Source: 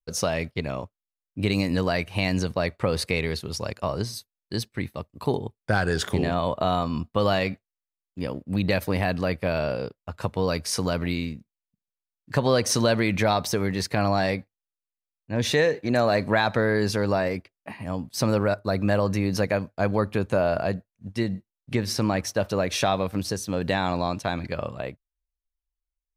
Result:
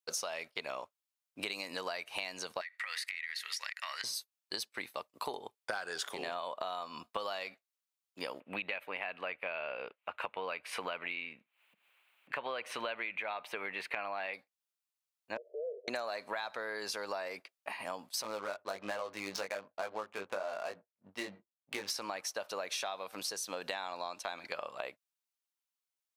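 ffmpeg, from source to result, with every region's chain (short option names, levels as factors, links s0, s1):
-filter_complex "[0:a]asettb=1/sr,asplit=3[s0][s1][s2];[s0]atrim=end=2.614[s3];[s1]atrim=start=2.61:end=4.04,asetpts=PTS-STARTPTS,afade=t=in:d=0.004:c=qsin,afade=t=out:st=1.426:d=0.004:c=qsin,highpass=f=1900:t=q:w=13,acompressor=threshold=0.0251:ratio=10:attack=3.2:release=140:knee=1:detection=peak[s4];[s2]atrim=start=4.036[s5];[s3][s4]acrossfade=d=0.004:c1=hsin:c2=qsin[s6];[s6][s5]acrossfade=d=0.004:c1=qsin:c2=hsin,asettb=1/sr,asplit=3[s7][s8][s9];[s7]atrim=end=8.404[s10];[s8]atrim=start=8.4:end=14.34,asetpts=PTS-STARTPTS,afade=t=in:d=0.004:c=qsin,afade=t=out:st=5.936:d=0.004:c=qsin,acompressor=mode=upward:threshold=0.00794:ratio=2.5:attack=3.2:release=140:knee=2.83:detection=peak,highshelf=f=3800:t=q:w=3:g=-14[s11];[s9]atrim=start=14.336[s12];[s10][s11]acrossfade=d=0.004:c1=hsin:c2=qsin[s13];[s13][s12]acrossfade=d=0.004:c1=qsin:c2=hsin,asettb=1/sr,asplit=3[s14][s15][s16];[s14]atrim=end=15.374[s17];[s15]atrim=start=15.37:end=15.88,asetpts=PTS-STARTPTS,afade=t=in:d=0.004:c=qsin,afade=t=out:st=0.506:d=0.004:c=qsin,acompressor=threshold=0.0282:ratio=3:attack=3.2:release=140:knee=1:detection=peak,asuperpass=centerf=500:order=12:qfactor=1.8[s18];[s16]atrim=start=15.876[s19];[s17][s18]acrossfade=d=0.004:c1=hsin:c2=qsin[s20];[s20][s19]acrossfade=d=0.004:c1=qsin:c2=hsin,asettb=1/sr,asplit=3[s21][s22][s23];[s21]atrim=end=18.224[s24];[s22]atrim=start=18.22:end=21.9,asetpts=PTS-STARTPTS,afade=t=in:d=0.004:c=qsin,afade=t=out:st=3.676:d=0.004:c=qsin,adynamicsmooth=sensitivity=7.5:basefreq=780,flanger=delay=18:depth=2.9:speed=1.2[s25];[s23]atrim=start=21.896[s26];[s24][s25]acrossfade=d=0.004:c1=hsin:c2=qsin[s27];[s27][s26]acrossfade=d=0.004:c1=qsin:c2=hsin,highpass=780,equalizer=f=1800:w=3:g=-3.5,acompressor=threshold=0.0112:ratio=10,volume=1.58"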